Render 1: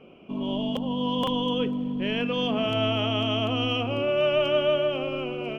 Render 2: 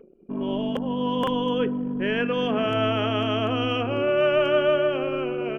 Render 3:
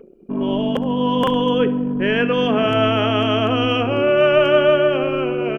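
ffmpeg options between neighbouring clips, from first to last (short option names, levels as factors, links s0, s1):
-af "acompressor=mode=upward:threshold=0.0112:ratio=2.5,anlmdn=2.51,equalizer=f=400:t=o:w=0.67:g=6,equalizer=f=1600:t=o:w=0.67:g=11,equalizer=f=4000:t=o:w=0.67:g=-9"
-af "aecho=1:1:68|136|204|272:0.141|0.0706|0.0353|0.0177,volume=2.11"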